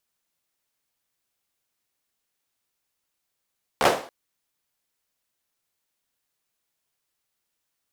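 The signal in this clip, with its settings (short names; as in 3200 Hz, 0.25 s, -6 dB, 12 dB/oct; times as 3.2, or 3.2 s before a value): hand clap length 0.28 s, apart 14 ms, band 560 Hz, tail 0.43 s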